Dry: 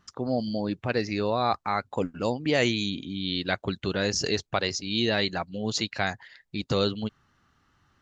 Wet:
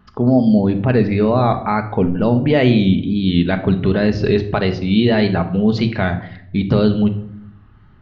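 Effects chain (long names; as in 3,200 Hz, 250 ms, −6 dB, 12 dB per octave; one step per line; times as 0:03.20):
low-pass filter 3,800 Hz 24 dB per octave
spectral tilt −2.5 dB per octave
in parallel at +3 dB: brickwall limiter −17 dBFS, peak gain reduction 8 dB
on the sum: tape wow and flutter 85 cents
on a send at −6 dB: convolution reverb RT60 0.70 s, pre-delay 5 ms
on the sum: level +1.5 dB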